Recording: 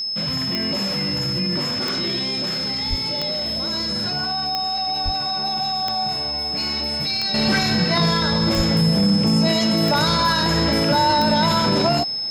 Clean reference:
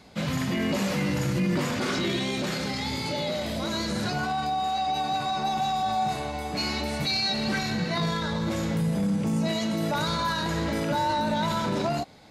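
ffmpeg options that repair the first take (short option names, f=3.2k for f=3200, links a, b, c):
-filter_complex "[0:a]adeclick=t=4,bandreject=f=5.2k:w=30,asplit=3[a][b][c];[a]afade=t=out:st=2.89:d=0.02[d];[b]highpass=f=140:w=0.5412,highpass=f=140:w=1.3066,afade=t=in:st=2.89:d=0.02,afade=t=out:st=3.01:d=0.02[e];[c]afade=t=in:st=3.01:d=0.02[f];[d][e][f]amix=inputs=3:normalize=0,asplit=3[g][h][i];[g]afade=t=out:st=5.04:d=0.02[j];[h]highpass=f=140:w=0.5412,highpass=f=140:w=1.3066,afade=t=in:st=5.04:d=0.02,afade=t=out:st=5.16:d=0.02[k];[i]afade=t=in:st=5.16:d=0.02[l];[j][k][l]amix=inputs=3:normalize=0,asplit=3[m][n][o];[m]afade=t=out:st=8.56:d=0.02[p];[n]highpass=f=140:w=0.5412,highpass=f=140:w=1.3066,afade=t=in:st=8.56:d=0.02,afade=t=out:st=8.68:d=0.02[q];[o]afade=t=in:st=8.68:d=0.02[r];[p][q][r]amix=inputs=3:normalize=0,asetnsamples=n=441:p=0,asendcmd='7.34 volume volume -8dB',volume=0dB"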